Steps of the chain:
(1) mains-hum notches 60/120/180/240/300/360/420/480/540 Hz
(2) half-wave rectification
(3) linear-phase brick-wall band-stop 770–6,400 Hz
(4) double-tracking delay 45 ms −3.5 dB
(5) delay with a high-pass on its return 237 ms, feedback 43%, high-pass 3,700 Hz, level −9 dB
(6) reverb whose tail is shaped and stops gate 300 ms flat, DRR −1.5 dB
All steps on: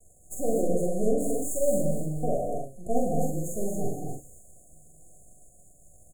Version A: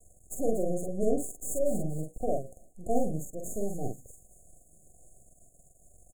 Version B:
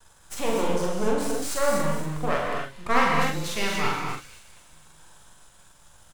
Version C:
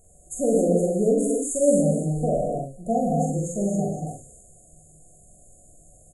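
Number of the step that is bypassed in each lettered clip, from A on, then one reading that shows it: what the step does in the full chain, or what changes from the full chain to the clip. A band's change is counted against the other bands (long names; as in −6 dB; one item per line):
6, change in integrated loudness −3.5 LU
3, 1 kHz band +10.0 dB
2, 250 Hz band +2.0 dB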